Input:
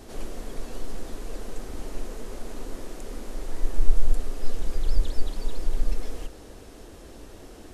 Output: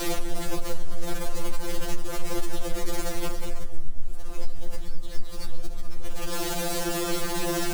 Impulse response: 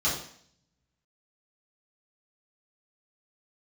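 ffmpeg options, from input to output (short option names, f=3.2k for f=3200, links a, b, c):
-af "aeval=exprs='val(0)+0.5*0.0398*sgn(val(0))':c=same,areverse,acompressor=mode=upward:threshold=-32dB:ratio=2.5,areverse,bandreject=f=308.9:t=h:w=4,bandreject=f=617.8:t=h:w=4,acompressor=threshold=-27dB:ratio=16,afftfilt=real='re*2.83*eq(mod(b,8),0)':imag='im*2.83*eq(mod(b,8),0)':win_size=2048:overlap=0.75,volume=8dB"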